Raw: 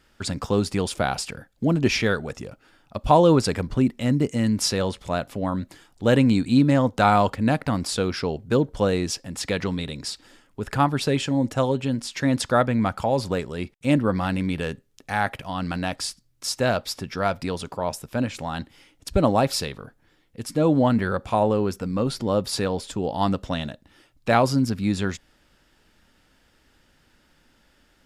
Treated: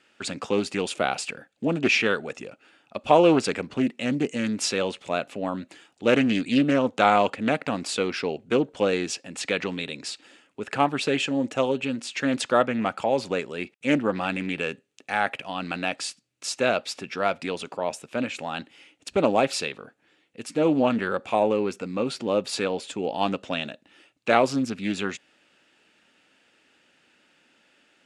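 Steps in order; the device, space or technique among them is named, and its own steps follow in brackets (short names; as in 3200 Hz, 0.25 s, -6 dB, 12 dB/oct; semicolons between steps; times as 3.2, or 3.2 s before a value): full-range speaker at full volume (Doppler distortion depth 0.28 ms; speaker cabinet 260–9000 Hz, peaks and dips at 1000 Hz -4 dB, 2600 Hz +8 dB, 5200 Hz -5 dB)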